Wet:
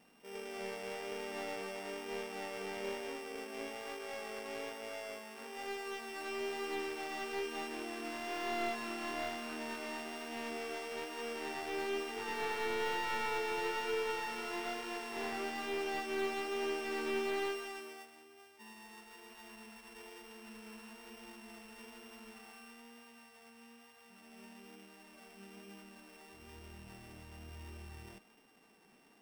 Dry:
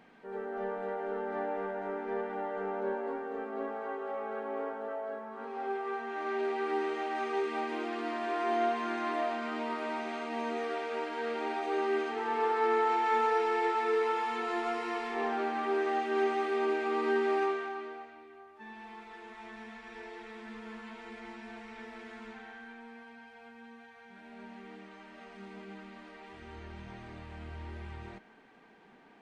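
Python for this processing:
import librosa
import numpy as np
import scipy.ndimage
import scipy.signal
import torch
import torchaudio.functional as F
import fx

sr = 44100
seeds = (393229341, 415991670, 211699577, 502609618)

y = np.r_[np.sort(x[:len(x) // 16 * 16].reshape(-1, 16), axis=1).ravel(), x[len(x) // 16 * 16:]]
y = fx.vibrato(y, sr, rate_hz=1.1, depth_cents=14.0)
y = fx.slew_limit(y, sr, full_power_hz=94.0)
y = F.gain(torch.from_numpy(y), -6.5).numpy()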